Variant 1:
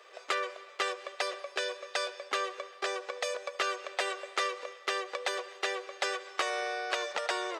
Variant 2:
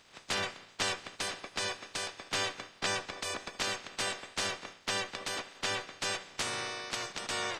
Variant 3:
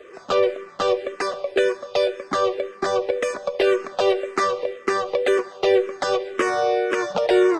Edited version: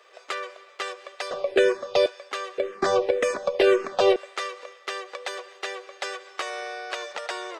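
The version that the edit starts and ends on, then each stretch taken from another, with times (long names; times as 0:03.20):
1
0:01.31–0:02.06: punch in from 3
0:02.58–0:04.16: punch in from 3
not used: 2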